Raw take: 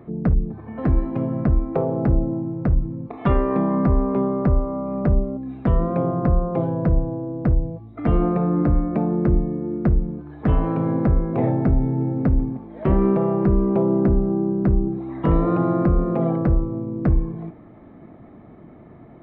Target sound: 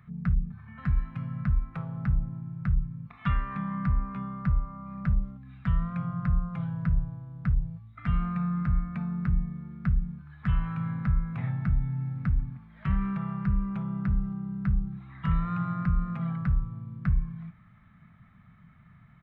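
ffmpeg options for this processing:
-af "firequalizer=gain_entry='entry(180,0);entry(310,-29);entry(520,-24);entry(1300,4)':delay=0.05:min_phase=1,volume=0.473"

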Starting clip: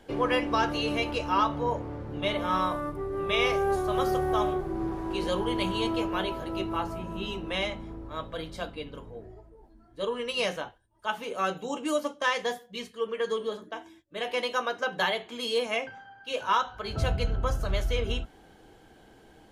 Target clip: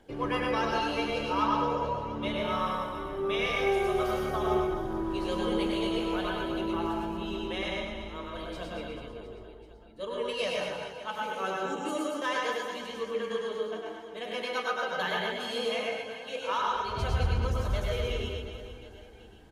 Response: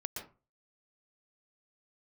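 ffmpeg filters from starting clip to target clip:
-filter_complex "[0:a]aphaser=in_gain=1:out_gain=1:delay=4.3:decay=0.28:speed=0.46:type=triangular,aecho=1:1:100|240|436|710.4|1095:0.631|0.398|0.251|0.158|0.1[s0];[1:a]atrim=start_sample=2205[s1];[s0][s1]afir=irnorm=-1:irlink=0,volume=0.631"

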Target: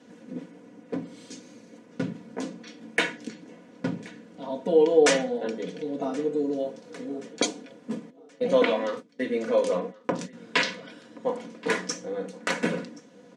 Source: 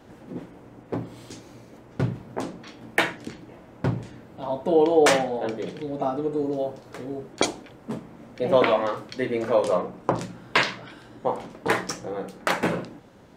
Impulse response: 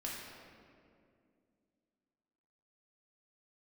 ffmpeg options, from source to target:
-filter_complex "[0:a]asettb=1/sr,asplit=3[s0][s1][s2];[s0]atrim=end=8.104[s3];[s1]atrim=start=8.1:end=10.33,asetpts=PTS-STARTPTS,afade=t=in:d=0.004:c=qsin,afade=t=out:st=2.226:d=0.004:c=qsin,agate=range=0.0447:threshold=0.0251:ratio=16:detection=peak[s4];[s2]atrim=start=10.326[s5];[s3][s4]acrossfade=d=0.004:c1=hsin:c2=qsin[s6];[s6][s5]acrossfade=d=0.004:c1=qsin:c2=hsin,highpass=f=130:w=0.5412,highpass=f=130:w=1.3066,equalizer=f=800:t=q:w=4:g=-10,equalizer=f=1200:t=q:w=4:g=-6,equalizer=f=6100:t=q:w=4:g=4,lowpass=f=9800:w=0.5412,lowpass=f=9800:w=1.3066,aecho=1:1:4.1:0.69,aecho=1:1:1076|2152|3228:0.0708|0.0333|0.0156,volume=0.708"

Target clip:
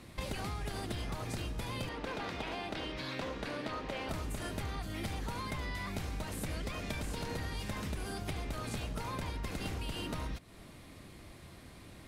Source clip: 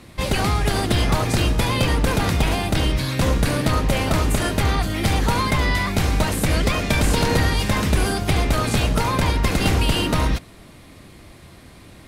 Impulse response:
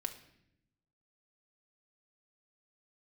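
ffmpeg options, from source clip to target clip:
-filter_complex "[0:a]asettb=1/sr,asplit=3[s0][s1][s2];[s0]atrim=end=1.894[s3];[s1]atrim=start=1.89:end=4.09,asetpts=PTS-STARTPTS,afade=t=in:d=0.004:c=qsin,afade=t=out:st=2.196:d=0.004:c=qsin,acrossover=split=240 5200:gain=0.2 1 0.141[s4][s5][s6];[s4][s5][s6]amix=inputs=3:normalize=0[s7];[s2]atrim=start=4.086[s8];[s3][s7]acrossfade=d=0.004:c1=hsin:c2=qsin[s9];[s9][s8]acrossfade=d=0.004:c1=qsin:c2=hsin,acompressor=threshold=0.0398:ratio=6,volume=0.398"

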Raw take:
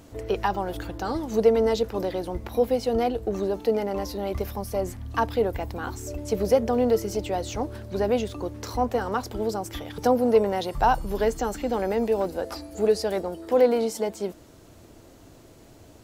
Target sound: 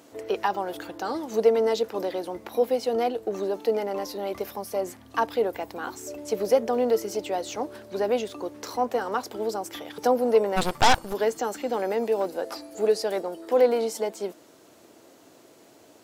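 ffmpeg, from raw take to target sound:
-filter_complex "[0:a]highpass=290,asplit=3[s0][s1][s2];[s0]afade=t=out:st=10.56:d=0.02[s3];[s1]aeval=exprs='0.299*(cos(1*acos(clip(val(0)/0.299,-1,1)))-cos(1*PI/2))+0.106*(cos(8*acos(clip(val(0)/0.299,-1,1)))-cos(8*PI/2))':c=same,afade=t=in:st=10.56:d=0.02,afade=t=out:st=11.12:d=0.02[s4];[s2]afade=t=in:st=11.12:d=0.02[s5];[s3][s4][s5]amix=inputs=3:normalize=0"

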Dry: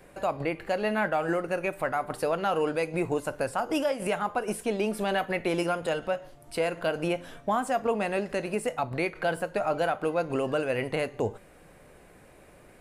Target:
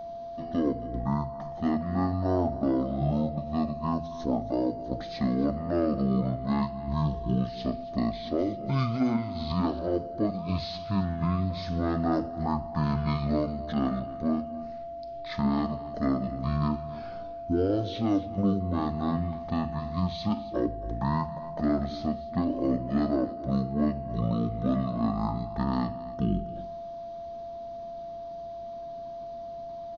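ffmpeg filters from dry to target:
-filter_complex "[0:a]bandreject=f=189.6:t=h:w=4,bandreject=f=379.2:t=h:w=4,asetrate=18846,aresample=44100,asplit=2[s0][s1];[s1]aecho=0:1:272:0.141[s2];[s0][s2]amix=inputs=2:normalize=0,aeval=exprs='val(0)+0.0158*sin(2*PI*680*n/s)':c=same"

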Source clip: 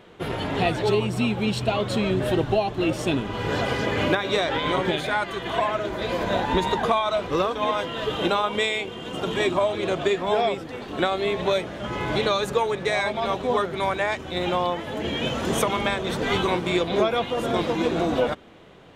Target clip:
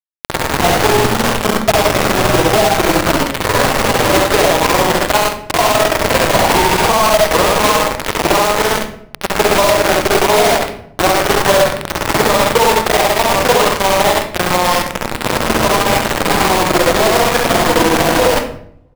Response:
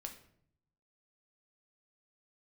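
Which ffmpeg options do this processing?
-filter_complex "[0:a]lowpass=6200,lowshelf=f=62:g=7.5,bandreject=f=50:t=h:w=6,bandreject=f=100:t=h:w=6,bandreject=f=150:t=h:w=6,bandreject=f=200:t=h:w=6,bandreject=f=250:t=h:w=6,bandreject=f=300:t=h:w=6,bandreject=f=350:t=h:w=6,bandreject=f=400:t=h:w=6,bandreject=f=450:t=h:w=6,aecho=1:1:83|166|249|332|415:0.316|0.152|0.0729|0.035|0.0168,tremolo=f=20:d=0.621,acrossover=split=540[s0][s1];[s0]asoftclip=type=tanh:threshold=0.0596[s2];[s2][s1]amix=inputs=2:normalize=0,asplit=2[s3][s4];[s4]asetrate=88200,aresample=44100,atempo=0.5,volume=0.282[s5];[s3][s5]amix=inputs=2:normalize=0,firequalizer=gain_entry='entry(130,0);entry(970,3);entry(1800,-19)':delay=0.05:min_phase=1,acrusher=bits=3:mix=0:aa=0.000001,asplit=2[s6][s7];[1:a]atrim=start_sample=2205,adelay=67[s8];[s7][s8]afir=irnorm=-1:irlink=0,volume=1.5[s9];[s6][s9]amix=inputs=2:normalize=0,alimiter=level_in=4.73:limit=0.891:release=50:level=0:latency=1,volume=0.891"

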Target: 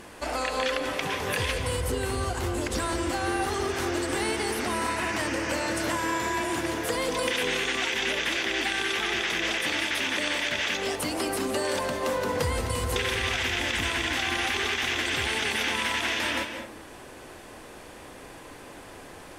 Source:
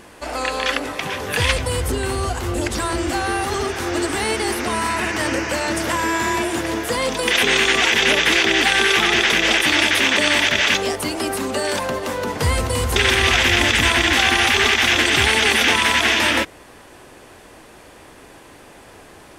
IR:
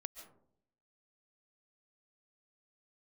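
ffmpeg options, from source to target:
-filter_complex "[0:a]acompressor=threshold=0.0631:ratio=6[s0];[1:a]atrim=start_sample=2205,asetrate=35280,aresample=44100[s1];[s0][s1]afir=irnorm=-1:irlink=0,volume=1.19"

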